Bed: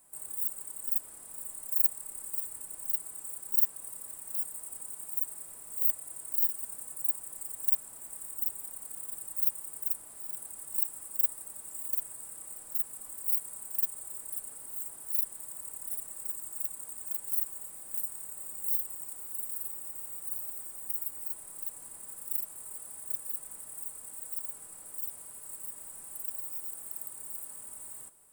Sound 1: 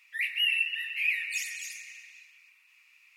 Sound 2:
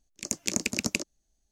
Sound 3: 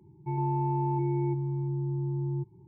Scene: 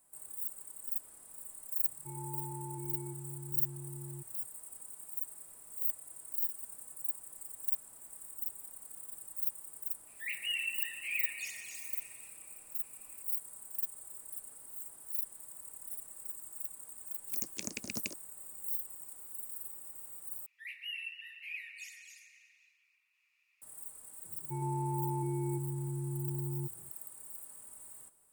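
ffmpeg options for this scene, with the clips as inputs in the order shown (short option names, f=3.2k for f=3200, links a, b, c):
-filter_complex "[3:a]asplit=2[a][b];[1:a]asplit=2[c][d];[0:a]volume=-6.5dB,asplit=2[e][f];[e]atrim=end=20.464[g];[d]atrim=end=3.16,asetpts=PTS-STARTPTS,volume=-15dB[h];[f]atrim=start=23.616[i];[a]atrim=end=2.67,asetpts=PTS-STARTPTS,volume=-14.5dB,afade=t=in:d=0.004:c=hsin,afade=t=out:st=2.666:d=0.004:c=hsin,adelay=1790[j];[c]atrim=end=3.16,asetpts=PTS-STARTPTS,volume=-9dB,afade=t=in:d=0.004:c=hsin,afade=t=out:st=3.156:d=0.004:c=hsin,adelay=10070[k];[2:a]atrim=end=1.51,asetpts=PTS-STARTPTS,volume=-12dB,afade=t=in:d=0.004:c=hsin,afade=t=out:st=1.506:d=0.004:c=hsin,adelay=17110[l];[b]atrim=end=2.67,asetpts=PTS-STARTPTS,volume=-6.5dB,afade=t=in:d=0.004:c=hsin,afade=t=out:st=2.666:d=0.004:c=hsin,adelay=24240[m];[g][h]acrossfade=d=0.004:c1=hsin:c2=hsin[n];[n][i]acrossfade=d=0.004:c1=hsin:c2=hsin[o];[o][j][k][l][m]amix=inputs=5:normalize=0"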